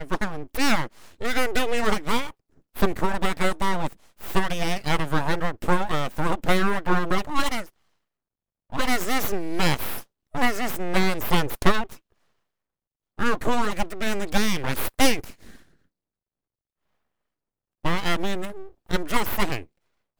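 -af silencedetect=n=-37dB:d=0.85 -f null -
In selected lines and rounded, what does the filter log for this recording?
silence_start: 7.66
silence_end: 8.72 | silence_duration: 1.06
silence_start: 11.95
silence_end: 13.19 | silence_duration: 1.23
silence_start: 15.56
silence_end: 17.85 | silence_duration: 2.29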